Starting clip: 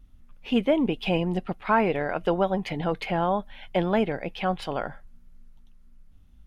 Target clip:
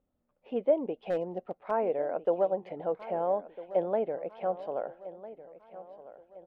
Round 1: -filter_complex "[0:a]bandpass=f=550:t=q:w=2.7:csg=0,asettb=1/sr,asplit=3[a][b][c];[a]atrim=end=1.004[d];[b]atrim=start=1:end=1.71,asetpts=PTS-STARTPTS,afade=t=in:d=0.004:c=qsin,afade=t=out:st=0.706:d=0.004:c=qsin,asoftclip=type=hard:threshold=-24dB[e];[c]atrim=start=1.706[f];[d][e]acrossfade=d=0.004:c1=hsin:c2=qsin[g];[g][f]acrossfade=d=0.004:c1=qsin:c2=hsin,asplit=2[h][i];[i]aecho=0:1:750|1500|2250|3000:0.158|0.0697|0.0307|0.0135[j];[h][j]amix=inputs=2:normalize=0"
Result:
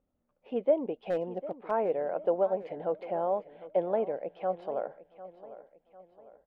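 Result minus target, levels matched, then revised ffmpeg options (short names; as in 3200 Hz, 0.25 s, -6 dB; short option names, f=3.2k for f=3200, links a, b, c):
echo 0.552 s early
-filter_complex "[0:a]bandpass=f=550:t=q:w=2.7:csg=0,asettb=1/sr,asplit=3[a][b][c];[a]atrim=end=1.004[d];[b]atrim=start=1:end=1.71,asetpts=PTS-STARTPTS,afade=t=in:d=0.004:c=qsin,afade=t=out:st=0.706:d=0.004:c=qsin,asoftclip=type=hard:threshold=-24dB[e];[c]atrim=start=1.706[f];[d][e]acrossfade=d=0.004:c1=hsin:c2=qsin[g];[g][f]acrossfade=d=0.004:c1=qsin:c2=hsin,asplit=2[h][i];[i]aecho=0:1:1302|2604|3906|5208:0.158|0.0697|0.0307|0.0135[j];[h][j]amix=inputs=2:normalize=0"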